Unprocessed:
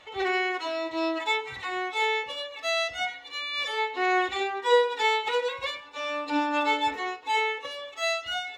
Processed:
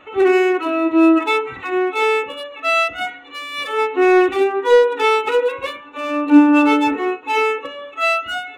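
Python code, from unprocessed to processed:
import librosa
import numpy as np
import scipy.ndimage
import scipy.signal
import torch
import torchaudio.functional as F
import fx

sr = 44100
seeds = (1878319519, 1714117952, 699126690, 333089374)

y = fx.wiener(x, sr, points=9)
y = fx.dynamic_eq(y, sr, hz=360.0, q=1.1, threshold_db=-40.0, ratio=4.0, max_db=5)
y = 10.0 ** (-13.0 / 20.0) * np.tanh(y / 10.0 ** (-13.0 / 20.0))
y = fx.small_body(y, sr, hz=(280.0, 1300.0, 2600.0), ring_ms=20, db=12)
y = y * 10.0 ** (5.0 / 20.0)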